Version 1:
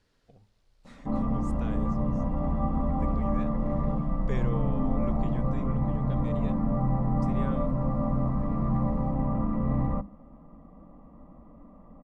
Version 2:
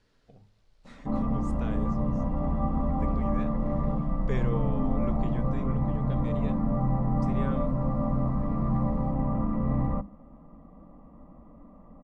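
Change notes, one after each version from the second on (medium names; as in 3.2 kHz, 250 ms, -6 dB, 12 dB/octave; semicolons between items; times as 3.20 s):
speech: send +11.0 dB; master: add treble shelf 11 kHz -11 dB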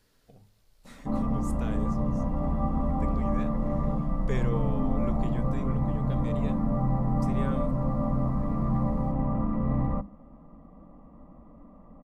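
speech: remove distance through air 65 m; master: add treble shelf 11 kHz +11 dB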